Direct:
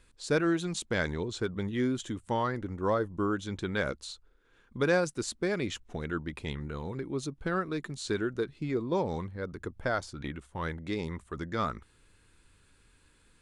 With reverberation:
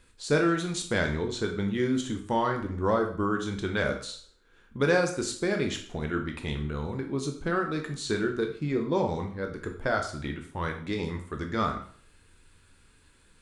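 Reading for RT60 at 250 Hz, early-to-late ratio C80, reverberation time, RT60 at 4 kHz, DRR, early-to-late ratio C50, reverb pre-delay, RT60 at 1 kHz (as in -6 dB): 0.45 s, 12.0 dB, 0.50 s, 0.45 s, 3.5 dB, 8.5 dB, 13 ms, 0.50 s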